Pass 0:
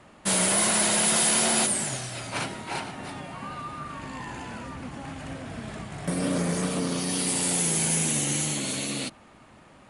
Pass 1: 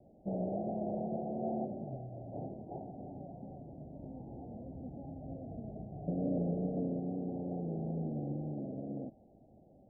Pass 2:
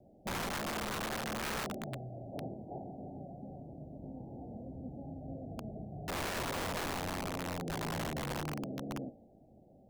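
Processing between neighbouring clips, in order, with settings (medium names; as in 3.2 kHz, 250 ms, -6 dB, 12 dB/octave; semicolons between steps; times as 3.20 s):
steep low-pass 770 Hz 96 dB/octave; trim -6.5 dB
de-hum 57.4 Hz, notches 38; integer overflow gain 33 dB; trim +1 dB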